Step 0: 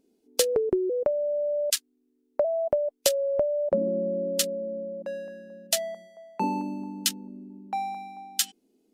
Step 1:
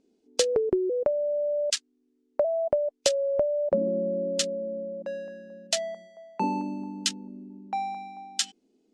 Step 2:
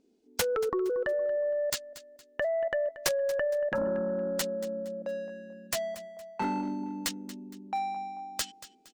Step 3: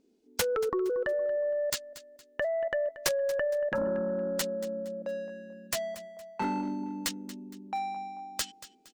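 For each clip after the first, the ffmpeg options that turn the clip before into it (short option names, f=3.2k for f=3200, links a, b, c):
-af "lowpass=f=7.7k:w=0.5412,lowpass=f=7.7k:w=1.3066"
-af "aeval=exprs='0.473*(cos(1*acos(clip(val(0)/0.473,-1,1)))-cos(1*PI/2))+0.106*(cos(2*acos(clip(val(0)/0.473,-1,1)))-cos(2*PI/2))+0.211*(cos(7*acos(clip(val(0)/0.473,-1,1)))-cos(7*PI/2))+0.00473*(cos(8*acos(clip(val(0)/0.473,-1,1)))-cos(8*PI/2))':c=same,aecho=1:1:232|464|696:0.158|0.0586|0.0217,volume=-7dB"
-af "equalizer=f=730:t=o:w=0.26:g=-2.5"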